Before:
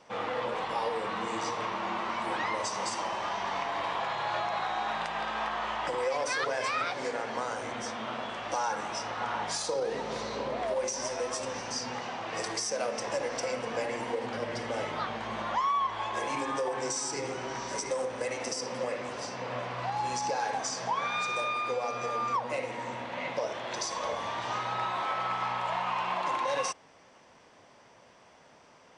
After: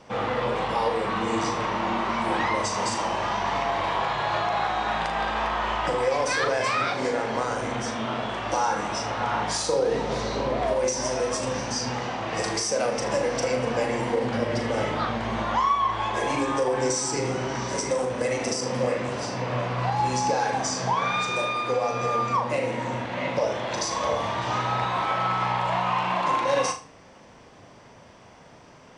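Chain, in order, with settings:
low-shelf EQ 230 Hz +12 dB
flutter between parallel walls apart 6.7 metres, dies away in 0.33 s
level +4.5 dB

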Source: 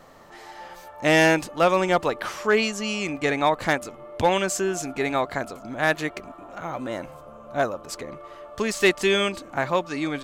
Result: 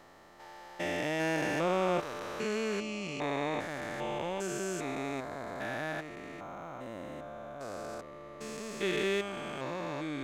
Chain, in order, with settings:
spectrum averaged block by block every 400 ms
level −6.5 dB

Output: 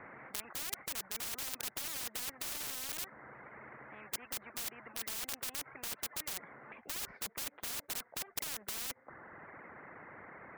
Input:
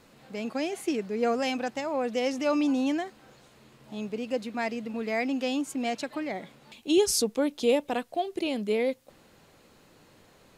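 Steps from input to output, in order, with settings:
high-pass filter 870 Hz 6 dB per octave
reverb reduction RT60 0.9 s
Chebyshev low-pass with heavy ripple 2,100 Hz, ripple 3 dB
wrap-around overflow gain 35.5 dB
every bin compressed towards the loudest bin 10 to 1
level +17.5 dB

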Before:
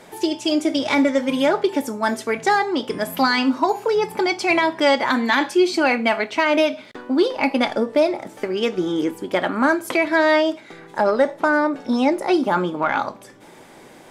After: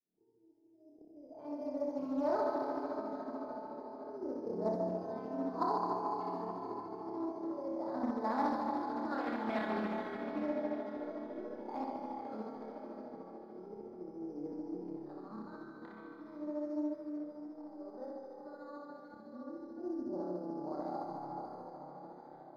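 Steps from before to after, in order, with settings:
fade in at the beginning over 1.06 s
source passing by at 0:04.71, 12 m/s, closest 9 metres
dynamic equaliser 230 Hz, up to +4 dB, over −45 dBFS, Q 3.2
downward compressor 3 to 1, threshold −28 dBFS, peak gain reduction 11.5 dB
volume swells 724 ms
auto-filter low-pass saw up 0.5 Hz 310–1,600 Hz
bad sample-rate conversion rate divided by 8×, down none, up hold
high-frequency loss of the air 410 metres
flutter between parallel walls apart 5.7 metres, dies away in 0.41 s
convolution reverb RT60 3.9 s, pre-delay 25 ms, DRR −2 dB
time stretch by overlap-add 1.6×, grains 146 ms
highs frequency-modulated by the lows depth 0.25 ms
level −4 dB

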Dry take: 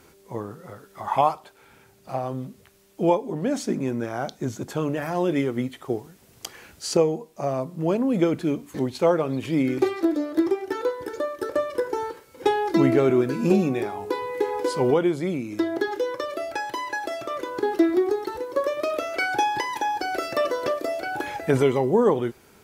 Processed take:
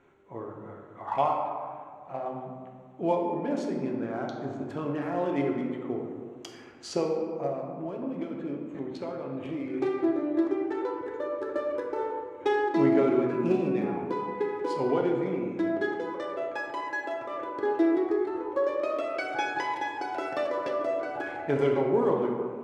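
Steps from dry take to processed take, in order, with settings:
adaptive Wiener filter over 9 samples
low-shelf EQ 170 Hz −7.5 dB
0:07.46–0:09.74: downward compressor, threshold −28 dBFS, peak gain reduction 12 dB
high-frequency loss of the air 66 metres
convolution reverb RT60 2.0 s, pre-delay 3 ms, DRR 0 dB
level −6.5 dB

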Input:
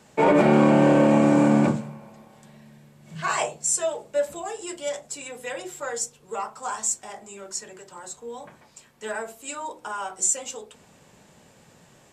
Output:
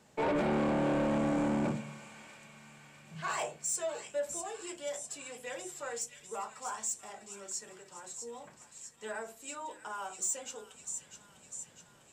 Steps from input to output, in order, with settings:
delay with a high-pass on its return 650 ms, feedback 61%, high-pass 2,300 Hz, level −8 dB
soft clipping −17.5 dBFS, distortion −11 dB
level −8.5 dB

